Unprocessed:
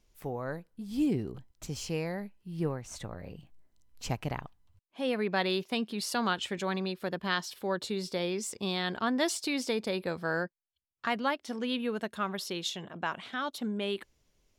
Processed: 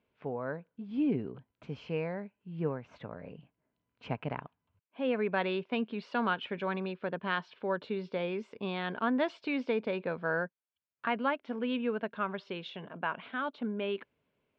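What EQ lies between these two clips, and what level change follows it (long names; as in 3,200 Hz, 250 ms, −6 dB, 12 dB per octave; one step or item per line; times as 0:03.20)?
loudspeaker in its box 200–2,400 Hz, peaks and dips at 200 Hz −4 dB, 340 Hz −9 dB, 540 Hz −3 dB, 780 Hz −7 dB, 1,200 Hz −5 dB, 1,900 Hz −9 dB
+4.5 dB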